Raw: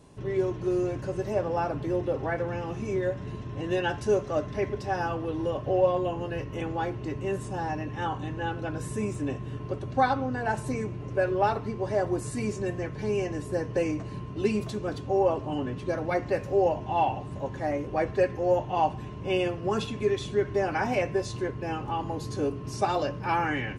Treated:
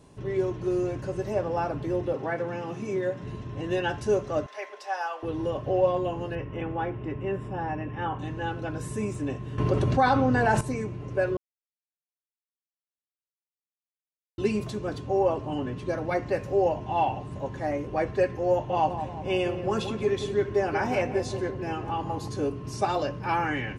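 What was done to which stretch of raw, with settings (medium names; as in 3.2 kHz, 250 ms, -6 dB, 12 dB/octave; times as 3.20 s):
2.13–3.22 s: high-pass 130 Hz 24 dB/octave
4.46–5.23 s: high-pass 610 Hz 24 dB/octave
6.35–8.19 s: Savitzky-Golay filter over 25 samples
9.58–10.61 s: level flattener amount 70%
11.37–14.38 s: mute
18.52–22.28 s: filtered feedback delay 177 ms, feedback 54%, low-pass 1.2 kHz, level -8 dB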